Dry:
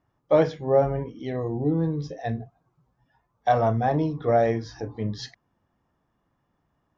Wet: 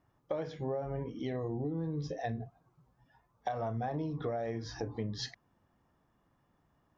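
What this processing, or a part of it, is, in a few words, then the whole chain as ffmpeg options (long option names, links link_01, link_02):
serial compression, peaks first: -af "acompressor=threshold=-27dB:ratio=5,acompressor=threshold=-34dB:ratio=3"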